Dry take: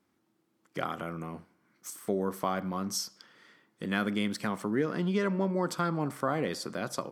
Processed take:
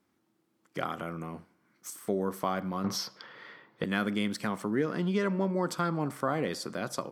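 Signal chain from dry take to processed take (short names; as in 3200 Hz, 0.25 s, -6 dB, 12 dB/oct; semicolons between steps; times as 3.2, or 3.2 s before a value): 2.84–3.84 graphic EQ 125/500/1000/2000/4000/8000 Hz +9/+10/+9/+7/+8/-12 dB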